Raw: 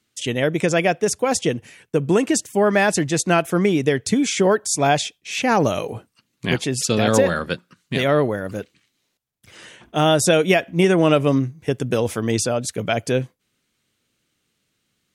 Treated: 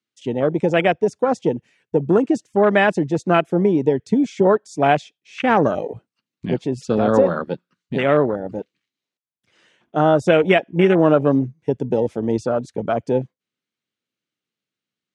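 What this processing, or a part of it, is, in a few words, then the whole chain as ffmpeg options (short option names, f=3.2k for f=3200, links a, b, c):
over-cleaned archive recording: -af "highpass=150,lowpass=5.9k,afwtdn=0.0794,volume=2dB"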